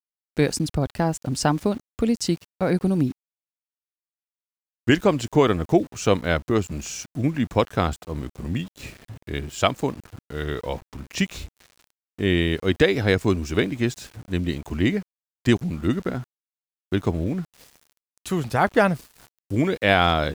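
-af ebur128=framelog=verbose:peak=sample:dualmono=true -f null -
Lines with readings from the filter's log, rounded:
Integrated loudness:
  I:         -20.7 LUFS
  Threshold: -31.4 LUFS
Loudness range:
  LRA:         5.3 LU
  Threshold: -42.1 LUFS
  LRA low:   -25.4 LUFS
  LRA high:  -20.1 LUFS
Sample peak:
  Peak:       -4.8 dBFS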